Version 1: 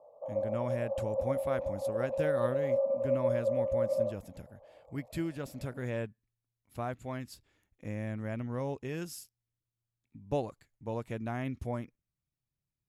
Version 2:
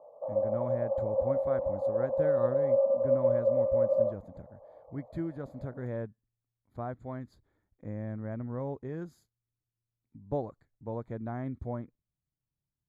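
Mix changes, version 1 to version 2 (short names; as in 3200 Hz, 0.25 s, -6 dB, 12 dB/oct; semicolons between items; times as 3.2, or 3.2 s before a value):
speech: add running mean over 16 samples; background +4.0 dB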